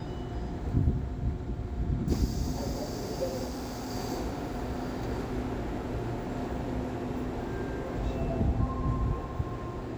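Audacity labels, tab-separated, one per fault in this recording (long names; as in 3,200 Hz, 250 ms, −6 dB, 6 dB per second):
3.450000	3.920000	clipping −33 dBFS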